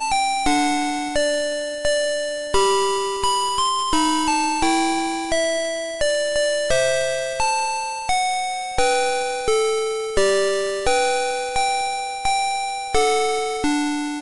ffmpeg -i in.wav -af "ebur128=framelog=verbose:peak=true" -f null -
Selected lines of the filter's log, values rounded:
Integrated loudness:
  I:         -20.7 LUFS
  Threshold: -30.7 LUFS
Loudness range:
  LRA:         1.3 LU
  Threshold: -40.6 LUFS
  LRA low:   -21.2 LUFS
  LRA high:  -19.9 LUFS
True peak:
  Peak:       -7.6 dBFS